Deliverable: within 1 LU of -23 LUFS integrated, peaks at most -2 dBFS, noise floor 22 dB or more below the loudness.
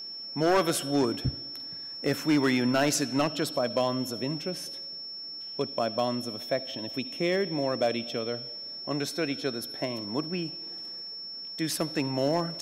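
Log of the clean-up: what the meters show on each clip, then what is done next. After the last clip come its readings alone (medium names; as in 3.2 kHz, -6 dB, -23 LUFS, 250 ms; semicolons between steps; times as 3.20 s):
clipped samples 0.5%; clipping level -17.5 dBFS; steady tone 5.4 kHz; tone level -37 dBFS; loudness -29.5 LUFS; peak level -17.5 dBFS; loudness target -23.0 LUFS
-> clip repair -17.5 dBFS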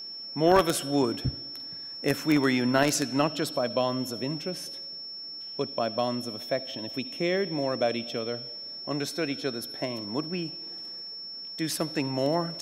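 clipped samples 0.0%; steady tone 5.4 kHz; tone level -37 dBFS
-> band-stop 5.4 kHz, Q 30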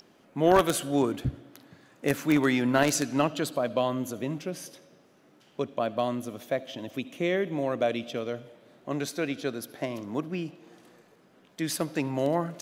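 steady tone not found; loudness -28.5 LUFS; peak level -8.0 dBFS; loudness target -23.0 LUFS
-> trim +5.5 dB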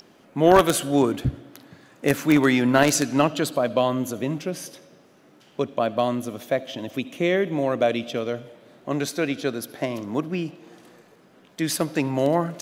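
loudness -23.5 LUFS; peak level -3.0 dBFS; noise floor -55 dBFS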